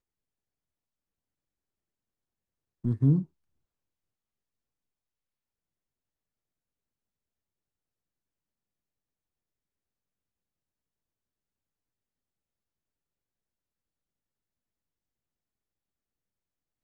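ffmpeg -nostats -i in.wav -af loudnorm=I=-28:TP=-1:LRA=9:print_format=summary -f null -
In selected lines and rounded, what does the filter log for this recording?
Input Integrated:    -27.2 LUFS
Input True Peak:     -13.7 dBTP
Input LRA:             8.5 LU
Input Threshold:     -37.7 LUFS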